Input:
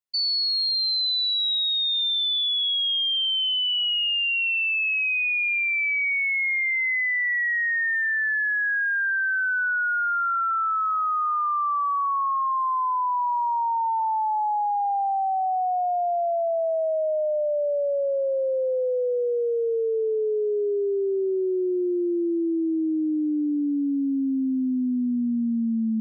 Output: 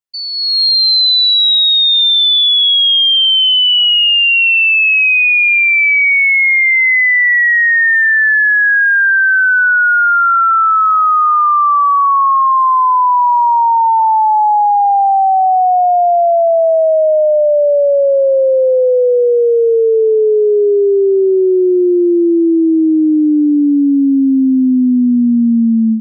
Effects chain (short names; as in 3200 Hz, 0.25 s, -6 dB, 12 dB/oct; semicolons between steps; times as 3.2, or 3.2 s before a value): AGC gain up to 14 dB